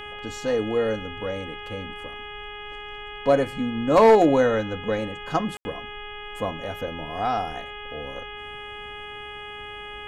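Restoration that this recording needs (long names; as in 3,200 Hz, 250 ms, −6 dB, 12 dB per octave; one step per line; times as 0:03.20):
clipped peaks rebuilt −9 dBFS
hum removal 415.7 Hz, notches 8
ambience match 0:05.57–0:05.65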